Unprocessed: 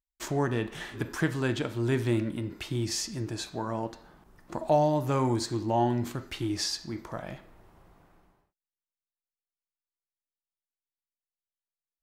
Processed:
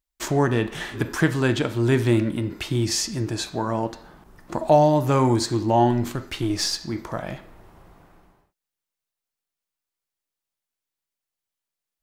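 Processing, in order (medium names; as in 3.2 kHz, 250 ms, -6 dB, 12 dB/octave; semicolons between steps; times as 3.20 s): 5.91–6.81 s: partial rectifier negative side -3 dB; trim +7.5 dB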